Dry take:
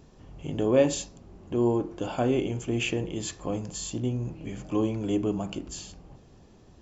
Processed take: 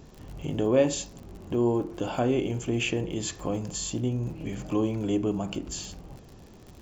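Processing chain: crackle 73/s -44 dBFS; in parallel at +1 dB: compressor, threshold -36 dBFS, peak gain reduction 19 dB; on the sum: gain -2 dB

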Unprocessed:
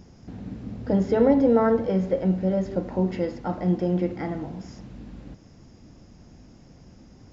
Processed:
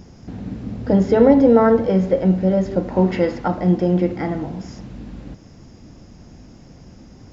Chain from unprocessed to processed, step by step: 2.96–3.48 bell 1500 Hz +6 dB 2.6 oct; gain +6.5 dB

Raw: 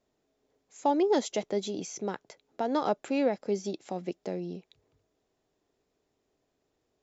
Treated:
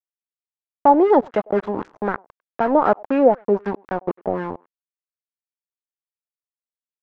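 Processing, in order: sample gate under -33.5 dBFS; speakerphone echo 0.1 s, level -26 dB; LFO low-pass sine 3.9 Hz 730–1600 Hz; gain +9 dB

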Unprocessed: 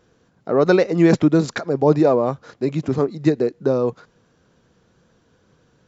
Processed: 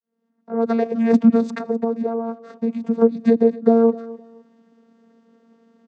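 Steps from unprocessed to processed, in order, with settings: opening faded in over 1.60 s; 1.4–3.01 compressor 10:1, threshold -23 dBFS, peak gain reduction 14.5 dB; vocoder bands 16, saw 229 Hz; feedback echo 0.256 s, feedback 27%, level -19 dB; gain +4.5 dB

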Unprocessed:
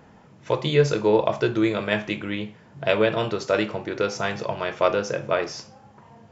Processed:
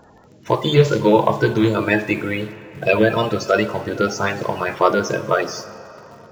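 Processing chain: bin magnitudes rounded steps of 30 dB; 1.76–2.29 bell 320 Hz +8.5 dB 0.28 oct; in parallel at -9 dB: bit-crush 7-bit; on the sum: reverb RT60 3.6 s, pre-delay 31 ms, DRR 14.5 dB; gain +3 dB

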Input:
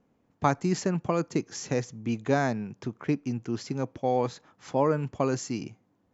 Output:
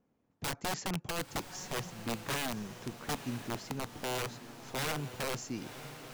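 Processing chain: wrapped overs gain 21.5 dB; diffused feedback echo 0.986 s, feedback 52%, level -11 dB; gain -7 dB

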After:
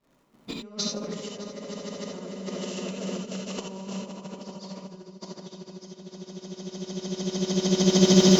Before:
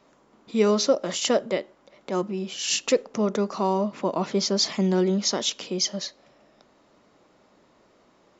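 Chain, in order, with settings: crackle 110/s -44 dBFS; swelling echo 0.151 s, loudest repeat 5, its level -6 dB; expander -44 dBFS; tone controls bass +10 dB, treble -2 dB; negative-ratio compressor -30 dBFS, ratio -0.5; non-linear reverb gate 0.1 s rising, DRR 1 dB

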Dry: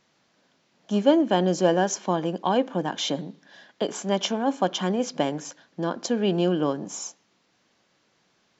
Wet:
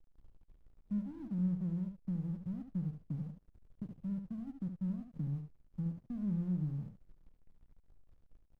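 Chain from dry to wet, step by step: inverse Chebyshev low-pass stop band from 690 Hz, stop band 80 dB; in parallel at +2.5 dB: compressor, threshold -59 dBFS, peak gain reduction 16.5 dB; on the sum: added noise brown -65 dBFS; transient shaper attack +2 dB, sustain -3 dB; backlash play -55.5 dBFS; on a send: echo 72 ms -7.5 dB; on the sum: gain +7 dB

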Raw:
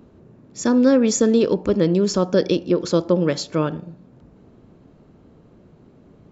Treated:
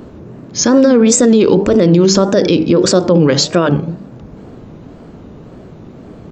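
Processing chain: notches 50/100/150/200/250/300/350/400/450 Hz; wow and flutter 150 cents; maximiser +17 dB; gain -1 dB

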